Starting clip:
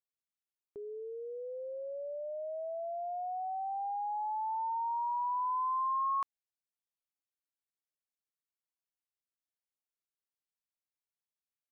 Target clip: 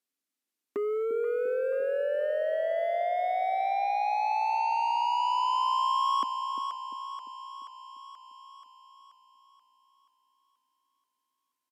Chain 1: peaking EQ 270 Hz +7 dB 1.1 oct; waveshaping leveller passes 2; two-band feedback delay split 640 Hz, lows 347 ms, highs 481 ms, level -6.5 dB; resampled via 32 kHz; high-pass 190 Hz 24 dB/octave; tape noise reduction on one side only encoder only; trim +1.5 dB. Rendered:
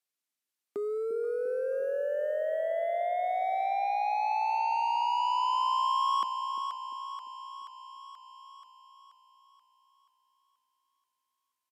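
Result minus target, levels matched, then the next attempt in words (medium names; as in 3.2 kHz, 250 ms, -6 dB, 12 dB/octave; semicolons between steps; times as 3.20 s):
250 Hz band -3.5 dB
peaking EQ 270 Hz +18.5 dB 1.1 oct; waveshaping leveller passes 2; two-band feedback delay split 640 Hz, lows 347 ms, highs 481 ms, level -6.5 dB; resampled via 32 kHz; high-pass 190 Hz 24 dB/octave; tape noise reduction on one side only encoder only; trim +1.5 dB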